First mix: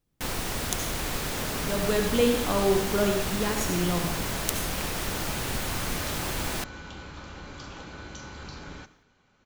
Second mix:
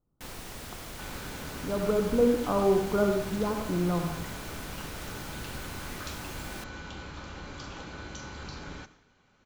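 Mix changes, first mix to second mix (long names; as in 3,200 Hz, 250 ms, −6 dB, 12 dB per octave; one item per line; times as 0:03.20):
speech: add linear-phase brick-wall low-pass 1,500 Hz
first sound −11.0 dB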